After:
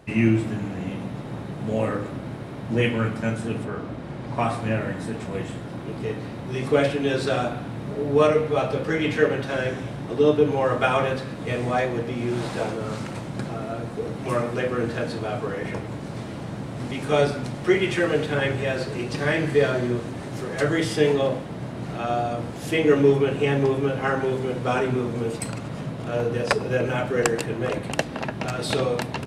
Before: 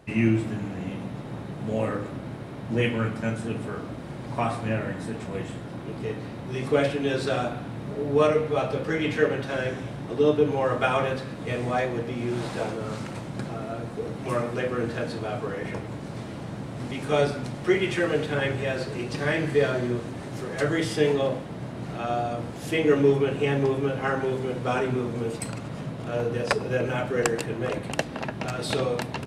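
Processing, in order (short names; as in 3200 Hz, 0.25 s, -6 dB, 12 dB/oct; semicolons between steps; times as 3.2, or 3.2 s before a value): 3.63–4.38 high shelf 4700 Hz -> 7700 Hz -10 dB; gain +2.5 dB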